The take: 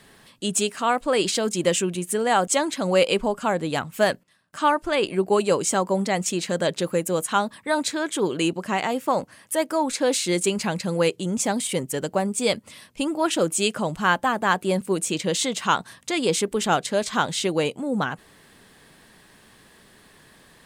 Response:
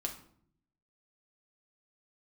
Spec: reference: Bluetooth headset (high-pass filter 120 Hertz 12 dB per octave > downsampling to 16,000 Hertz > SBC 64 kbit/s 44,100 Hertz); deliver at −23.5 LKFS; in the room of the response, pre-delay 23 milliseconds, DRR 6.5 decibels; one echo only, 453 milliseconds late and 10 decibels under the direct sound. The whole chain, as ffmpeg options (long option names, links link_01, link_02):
-filter_complex "[0:a]aecho=1:1:453:0.316,asplit=2[link_01][link_02];[1:a]atrim=start_sample=2205,adelay=23[link_03];[link_02][link_03]afir=irnorm=-1:irlink=0,volume=-7dB[link_04];[link_01][link_04]amix=inputs=2:normalize=0,highpass=120,aresample=16000,aresample=44100,volume=-1dB" -ar 44100 -c:a sbc -b:a 64k